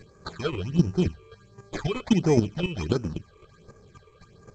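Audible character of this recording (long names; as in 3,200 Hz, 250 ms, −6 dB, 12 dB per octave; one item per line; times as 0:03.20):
aliases and images of a low sample rate 2,800 Hz, jitter 0%
chopped level 3.8 Hz, depth 65%, duty 10%
phaser sweep stages 8, 1.4 Hz, lowest notch 200–3,700 Hz
G.722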